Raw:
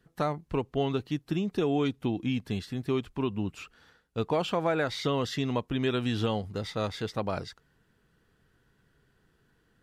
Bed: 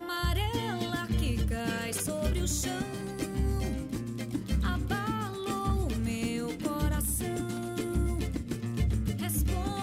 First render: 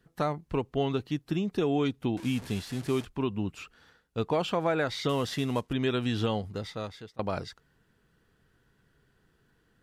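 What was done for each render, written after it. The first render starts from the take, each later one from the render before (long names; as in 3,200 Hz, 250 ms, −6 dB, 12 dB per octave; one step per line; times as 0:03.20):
0:02.17–0:03.05: linear delta modulator 64 kbit/s, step −38 dBFS
0:05.09–0:05.73: variable-slope delta modulation 64 kbit/s
0:06.45–0:07.19: fade out, to −24 dB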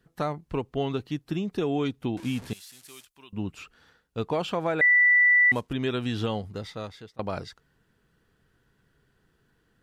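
0:02.53–0:03.33: first-order pre-emphasis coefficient 0.97
0:04.81–0:05.52: beep over 1,970 Hz −15.5 dBFS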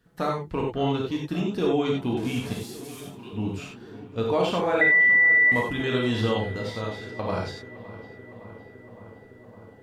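feedback echo with a low-pass in the loop 561 ms, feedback 80%, low-pass 2,600 Hz, level −17 dB
reverb whose tail is shaped and stops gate 120 ms flat, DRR −2 dB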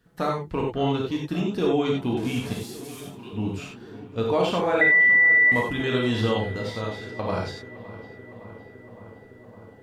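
level +1 dB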